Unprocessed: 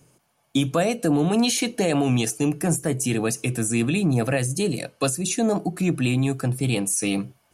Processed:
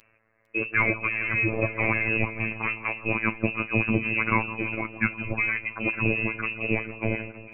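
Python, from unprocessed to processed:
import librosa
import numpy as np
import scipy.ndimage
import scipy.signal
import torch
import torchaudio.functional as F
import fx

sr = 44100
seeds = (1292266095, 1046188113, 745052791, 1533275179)

y = fx.tilt_eq(x, sr, slope=4.5)
y = fx.freq_invert(y, sr, carrier_hz=2800)
y = fx.robotise(y, sr, hz=111.0)
y = fx.echo_split(y, sr, split_hz=1300.0, low_ms=162, high_ms=453, feedback_pct=52, wet_db=-14)
y = y * 10.0 ** (3.5 / 20.0)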